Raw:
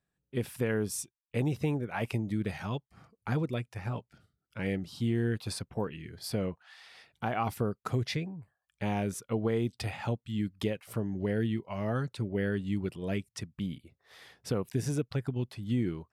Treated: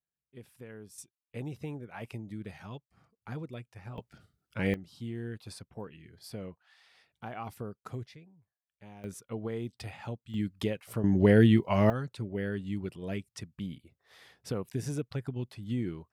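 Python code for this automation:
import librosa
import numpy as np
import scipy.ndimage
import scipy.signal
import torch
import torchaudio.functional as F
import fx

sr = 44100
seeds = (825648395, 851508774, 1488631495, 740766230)

y = fx.gain(x, sr, db=fx.steps((0.0, -17.0), (0.98, -9.0), (3.98, 3.5), (4.74, -9.0), (8.06, -19.0), (9.04, -6.5), (10.34, 0.0), (11.04, 10.0), (11.9, -3.0)))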